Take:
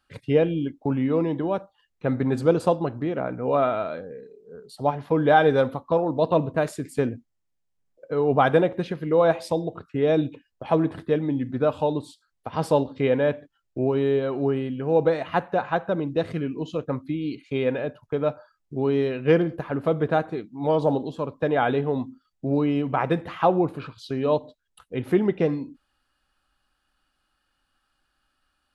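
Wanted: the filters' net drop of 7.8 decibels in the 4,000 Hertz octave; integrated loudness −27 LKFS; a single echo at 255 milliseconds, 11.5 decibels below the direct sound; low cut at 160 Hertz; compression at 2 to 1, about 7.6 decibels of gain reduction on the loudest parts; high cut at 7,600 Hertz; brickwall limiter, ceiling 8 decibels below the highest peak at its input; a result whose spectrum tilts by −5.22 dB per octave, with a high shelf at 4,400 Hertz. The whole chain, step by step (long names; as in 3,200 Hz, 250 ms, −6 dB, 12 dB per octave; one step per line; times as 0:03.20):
high-pass filter 160 Hz
low-pass filter 7,600 Hz
parametric band 4,000 Hz −7 dB
high-shelf EQ 4,400 Hz −6.5 dB
downward compressor 2 to 1, threshold −28 dBFS
brickwall limiter −21 dBFS
single-tap delay 255 ms −11.5 dB
level +5 dB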